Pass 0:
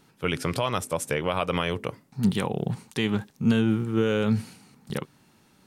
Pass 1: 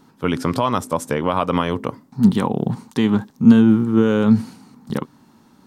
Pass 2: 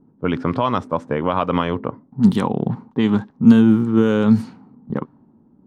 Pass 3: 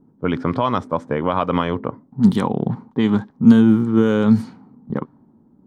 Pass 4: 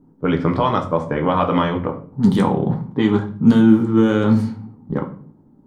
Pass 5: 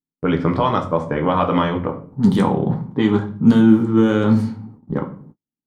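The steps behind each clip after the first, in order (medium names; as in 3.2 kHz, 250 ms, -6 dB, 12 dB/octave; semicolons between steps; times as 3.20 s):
fifteen-band graphic EQ 250 Hz +10 dB, 1 kHz +7 dB, 2.5 kHz -6 dB, 10 kHz -5 dB; trim +3.5 dB
level-controlled noise filter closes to 430 Hz, open at -10.5 dBFS
band-stop 2.7 kHz, Q 11
simulated room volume 39 m³, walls mixed, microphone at 0.42 m
gate -42 dBFS, range -43 dB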